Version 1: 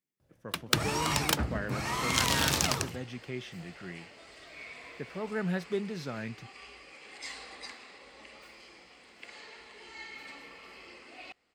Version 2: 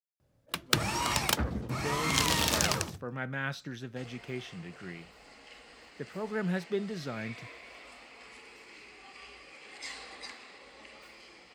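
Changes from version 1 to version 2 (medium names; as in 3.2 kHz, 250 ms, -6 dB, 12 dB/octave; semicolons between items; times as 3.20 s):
speech: entry +1.00 s; second sound: entry +2.60 s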